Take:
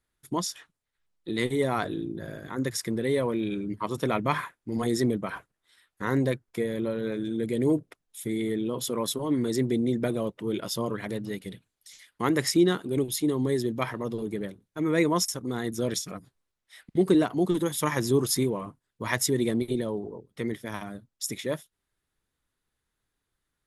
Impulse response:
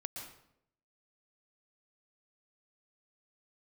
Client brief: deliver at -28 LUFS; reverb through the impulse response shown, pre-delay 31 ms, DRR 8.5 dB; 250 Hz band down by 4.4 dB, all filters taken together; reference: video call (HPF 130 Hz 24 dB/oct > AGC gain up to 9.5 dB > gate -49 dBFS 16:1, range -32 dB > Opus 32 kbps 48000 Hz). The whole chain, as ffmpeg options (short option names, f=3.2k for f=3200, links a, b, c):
-filter_complex "[0:a]equalizer=f=250:t=o:g=-6,asplit=2[a][b];[1:a]atrim=start_sample=2205,adelay=31[c];[b][c]afir=irnorm=-1:irlink=0,volume=-7dB[d];[a][d]amix=inputs=2:normalize=0,highpass=f=130:w=0.5412,highpass=f=130:w=1.3066,dynaudnorm=m=9.5dB,agate=range=-32dB:threshold=-49dB:ratio=16,volume=-1.5dB" -ar 48000 -c:a libopus -b:a 32k